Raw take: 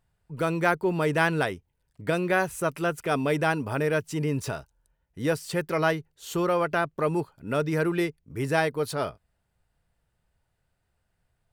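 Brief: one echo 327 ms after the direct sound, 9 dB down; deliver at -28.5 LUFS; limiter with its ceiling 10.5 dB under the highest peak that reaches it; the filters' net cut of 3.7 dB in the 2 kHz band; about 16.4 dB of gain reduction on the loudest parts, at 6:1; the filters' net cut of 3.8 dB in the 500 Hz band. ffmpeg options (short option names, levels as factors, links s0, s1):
-af "equalizer=f=500:t=o:g=-4.5,equalizer=f=2000:t=o:g=-5,acompressor=threshold=0.00891:ratio=6,alimiter=level_in=6.68:limit=0.0631:level=0:latency=1,volume=0.15,aecho=1:1:327:0.355,volume=11.2"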